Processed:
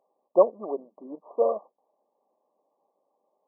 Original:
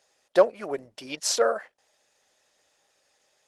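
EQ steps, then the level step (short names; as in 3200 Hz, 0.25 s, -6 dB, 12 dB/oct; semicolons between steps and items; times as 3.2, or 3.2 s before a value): brick-wall FIR band-pass 170–1200 Hz; 0.0 dB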